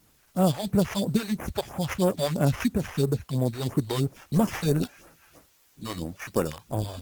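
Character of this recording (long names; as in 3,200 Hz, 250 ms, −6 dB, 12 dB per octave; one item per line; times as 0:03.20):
aliases and images of a low sample rate 4,100 Hz, jitter 0%
phaser sweep stages 2, 3 Hz, lowest notch 170–4,300 Hz
a quantiser's noise floor 10 bits, dither triangular
Opus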